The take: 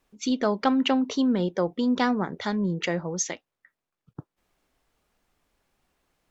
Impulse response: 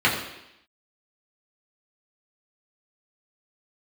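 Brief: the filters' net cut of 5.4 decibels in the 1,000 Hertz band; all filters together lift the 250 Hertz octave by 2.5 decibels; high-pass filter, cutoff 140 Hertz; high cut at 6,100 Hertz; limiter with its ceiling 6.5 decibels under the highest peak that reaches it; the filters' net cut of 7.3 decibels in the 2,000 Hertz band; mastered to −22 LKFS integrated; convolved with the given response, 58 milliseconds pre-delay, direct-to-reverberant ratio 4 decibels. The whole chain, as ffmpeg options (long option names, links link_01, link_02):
-filter_complex "[0:a]highpass=140,lowpass=6100,equalizer=frequency=250:width_type=o:gain=3.5,equalizer=frequency=1000:width_type=o:gain=-6,equalizer=frequency=2000:width_type=o:gain=-7.5,alimiter=limit=-16.5dB:level=0:latency=1,asplit=2[link_01][link_02];[1:a]atrim=start_sample=2205,adelay=58[link_03];[link_02][link_03]afir=irnorm=-1:irlink=0,volume=-22.5dB[link_04];[link_01][link_04]amix=inputs=2:normalize=0,volume=2.5dB"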